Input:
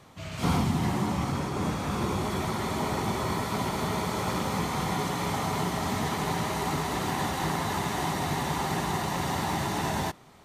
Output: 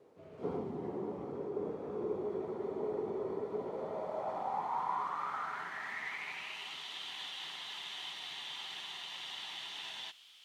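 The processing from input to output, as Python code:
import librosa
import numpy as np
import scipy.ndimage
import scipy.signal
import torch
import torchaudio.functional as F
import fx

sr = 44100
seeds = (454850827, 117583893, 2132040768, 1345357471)

y = fx.quant_dither(x, sr, seeds[0], bits=8, dither='triangular')
y = fx.filter_sweep_bandpass(y, sr, from_hz=430.0, to_hz=3200.0, start_s=3.55, end_s=6.8, q=5.5)
y = y * 10.0 ** (2.5 / 20.0)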